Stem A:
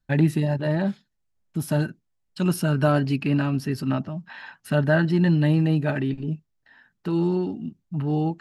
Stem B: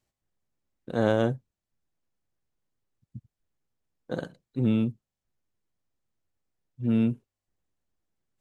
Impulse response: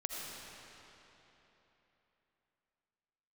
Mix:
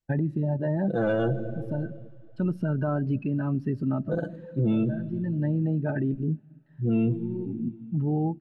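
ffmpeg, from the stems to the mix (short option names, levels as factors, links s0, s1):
-filter_complex "[0:a]lowpass=f=1800:p=1,acompressor=threshold=0.0631:ratio=6,volume=1.12,asplit=2[s0][s1];[s1]volume=0.119[s2];[1:a]aecho=1:1:6:0.7,asoftclip=type=tanh:threshold=0.141,volume=1.26,asplit=3[s3][s4][s5];[s4]volume=0.398[s6];[s5]apad=whole_len=370604[s7];[s0][s7]sidechaincompress=threshold=0.0141:ratio=8:attack=22:release=594[s8];[2:a]atrim=start_sample=2205[s9];[s2][s6]amix=inputs=2:normalize=0[s10];[s10][s9]afir=irnorm=-1:irlink=0[s11];[s8][s3][s11]amix=inputs=3:normalize=0,afftdn=nr=17:nf=-32,alimiter=limit=0.126:level=0:latency=1:release=29"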